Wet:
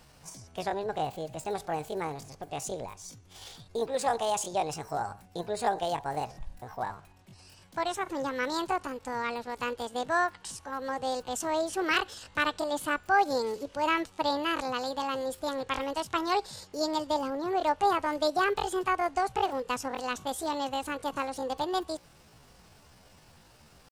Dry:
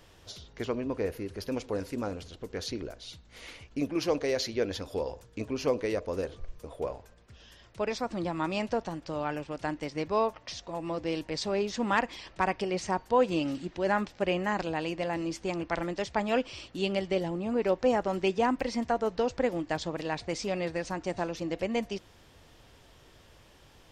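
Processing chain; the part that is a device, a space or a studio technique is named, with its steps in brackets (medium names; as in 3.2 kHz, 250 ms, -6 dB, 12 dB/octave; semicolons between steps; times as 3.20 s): chipmunk voice (pitch shift +8 st)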